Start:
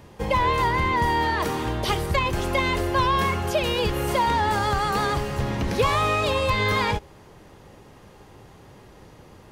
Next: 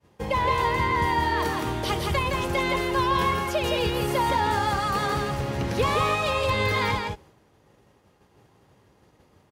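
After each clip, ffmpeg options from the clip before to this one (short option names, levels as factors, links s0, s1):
-filter_complex "[0:a]highpass=57,agate=range=0.0224:threshold=0.01:ratio=3:detection=peak,asplit=2[s0][s1];[s1]aecho=0:1:166:0.668[s2];[s0][s2]amix=inputs=2:normalize=0,volume=0.708"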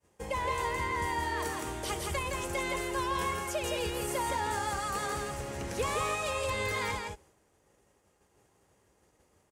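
-af "equalizer=f=125:t=o:w=1:g=-8,equalizer=f=250:t=o:w=1:g=-4,equalizer=f=1000:t=o:w=1:g=-3,equalizer=f=4000:t=o:w=1:g=-6,equalizer=f=8000:t=o:w=1:g=11,volume=0.501"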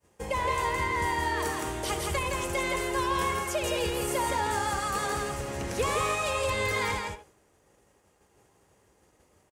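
-filter_complex "[0:a]asplit=2[s0][s1];[s1]adelay=80,highpass=300,lowpass=3400,asoftclip=type=hard:threshold=0.0335,volume=0.355[s2];[s0][s2]amix=inputs=2:normalize=0,volume=1.5"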